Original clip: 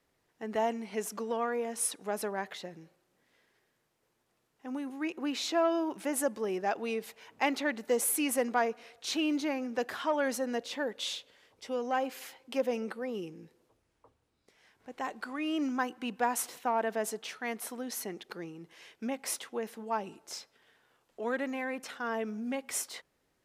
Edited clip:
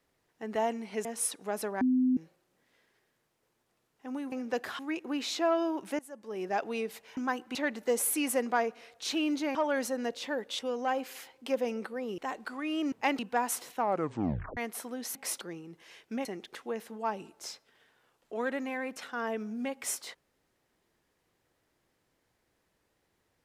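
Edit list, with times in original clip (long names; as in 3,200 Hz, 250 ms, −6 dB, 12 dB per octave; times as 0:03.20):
0:01.05–0:01.65: remove
0:02.41–0:02.77: beep over 255 Hz −22.5 dBFS
0:06.12–0:06.61: fade in quadratic, from −20.5 dB
0:07.30–0:07.57: swap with 0:15.68–0:16.06
0:09.57–0:10.04: move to 0:04.92
0:11.08–0:11.65: remove
0:13.24–0:14.94: remove
0:16.68: tape stop 0.76 s
0:18.02–0:18.32: swap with 0:19.16–0:19.42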